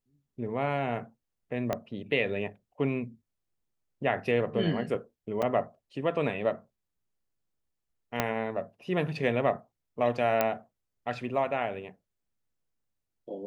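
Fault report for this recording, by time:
1.73 pop -15 dBFS
5.42–5.43 gap 5.4 ms
8.2 pop -10 dBFS
10.41 pop -11 dBFS

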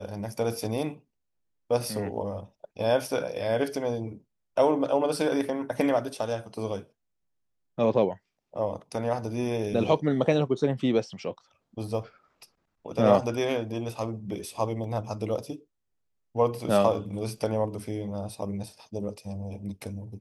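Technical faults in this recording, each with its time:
14.84 gap 2.3 ms

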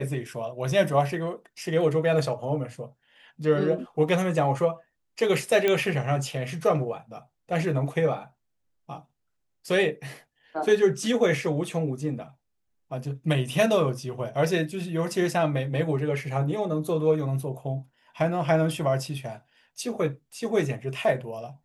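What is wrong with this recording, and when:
5.68 pop -11 dBFS

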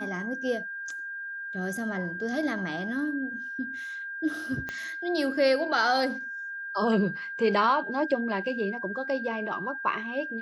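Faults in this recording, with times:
tone 1600 Hz -34 dBFS
4.69 pop -20 dBFS

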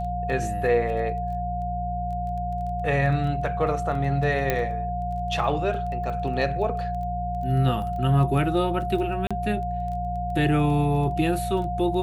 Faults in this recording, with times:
crackle 12/s -34 dBFS
hum 60 Hz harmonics 3 -31 dBFS
tone 710 Hz -28 dBFS
4.5 pop -9 dBFS
9.27–9.31 gap 36 ms

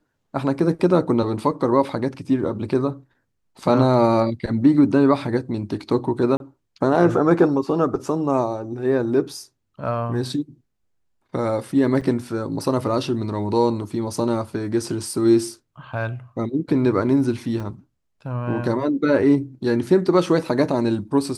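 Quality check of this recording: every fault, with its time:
6.37–6.4 gap 31 ms
12.01–12.02 gap 5.8 ms
17.6 gap 2.7 ms

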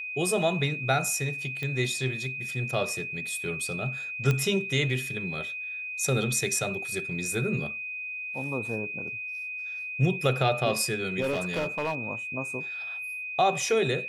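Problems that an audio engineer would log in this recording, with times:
tone 2500 Hz -33 dBFS
1.63 pop -21 dBFS
4.31 pop -13 dBFS
11.21–12.03 clipped -24 dBFS

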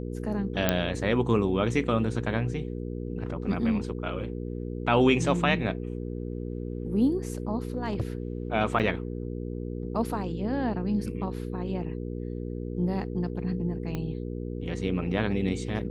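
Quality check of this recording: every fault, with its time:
hum 60 Hz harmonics 8 -34 dBFS
0.69 pop -7 dBFS
7.77–8.01 clipped -23 dBFS
8.79–8.8 gap 7.5 ms
13.95 pop -19 dBFS

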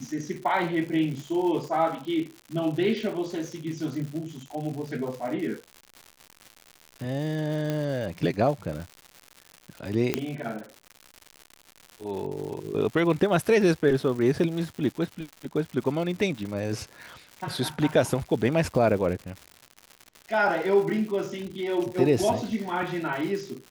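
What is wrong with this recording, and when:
crackle 180/s -34 dBFS
7.7 pop -16 dBFS
10.14 pop -9 dBFS

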